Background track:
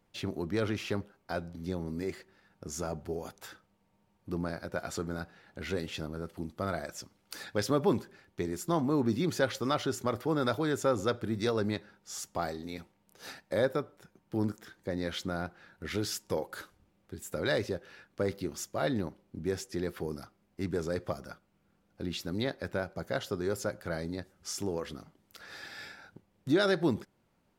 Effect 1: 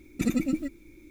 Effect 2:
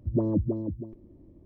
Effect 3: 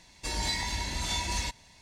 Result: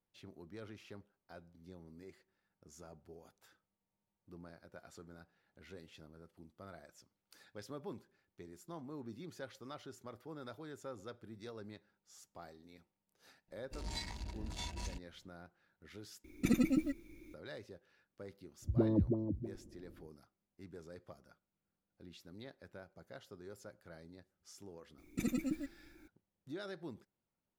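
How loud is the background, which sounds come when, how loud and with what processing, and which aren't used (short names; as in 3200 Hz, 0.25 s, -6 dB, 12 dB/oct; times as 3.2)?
background track -19 dB
13.48 add 3 -9 dB + Wiener smoothing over 41 samples
16.24 replace with 1 -4.5 dB + notch 7600 Hz, Q 8
18.62 add 2 -5.5 dB
24.98 add 1 -10 dB + high shelf 7700 Hz +4 dB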